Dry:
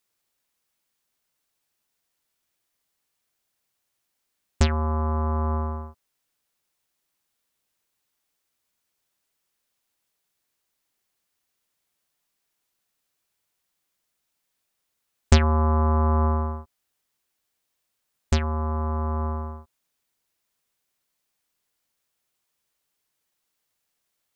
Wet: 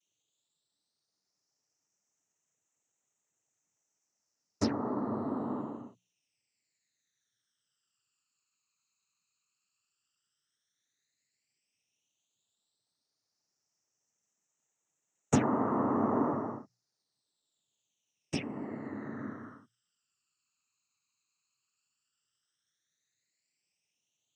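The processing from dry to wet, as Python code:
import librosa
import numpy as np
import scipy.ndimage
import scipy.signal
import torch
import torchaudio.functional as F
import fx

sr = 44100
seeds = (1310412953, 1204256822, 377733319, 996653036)

y = fx.noise_vocoder(x, sr, seeds[0], bands=12)
y = fx.phaser_stages(y, sr, stages=12, low_hz=590.0, high_hz=4000.0, hz=0.083, feedback_pct=50)
y = fx.hum_notches(y, sr, base_hz=60, count=3)
y = F.gain(torch.from_numpy(y), -4.5).numpy()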